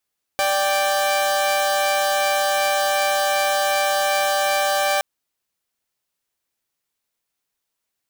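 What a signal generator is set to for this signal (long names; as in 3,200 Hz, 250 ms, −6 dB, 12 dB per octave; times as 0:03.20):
held notes D5/G5 saw, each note −18 dBFS 4.62 s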